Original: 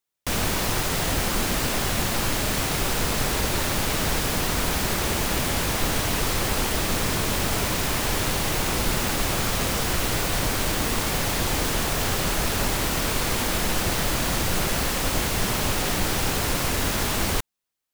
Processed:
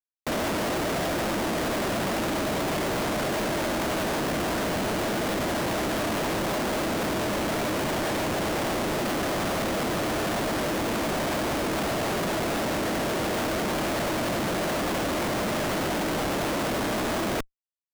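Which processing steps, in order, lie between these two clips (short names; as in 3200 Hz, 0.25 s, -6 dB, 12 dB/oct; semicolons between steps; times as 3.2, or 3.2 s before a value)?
speaker cabinet 170–4900 Hz, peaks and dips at 210 Hz +4 dB, 320 Hz +7 dB, 630 Hz +9 dB, 2500 Hz -5 dB, 4200 Hz -8 dB; Schmitt trigger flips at -31 dBFS; gain -1.5 dB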